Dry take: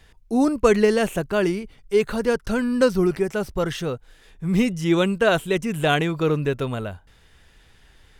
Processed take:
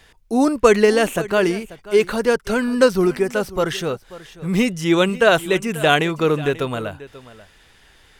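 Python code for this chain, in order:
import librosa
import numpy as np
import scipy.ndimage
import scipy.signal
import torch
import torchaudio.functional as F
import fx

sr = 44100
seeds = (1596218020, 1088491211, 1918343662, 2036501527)

p1 = fx.low_shelf(x, sr, hz=220.0, db=-9.0)
p2 = p1 + fx.echo_single(p1, sr, ms=538, db=-17.5, dry=0)
y = p2 * librosa.db_to_amplitude(5.5)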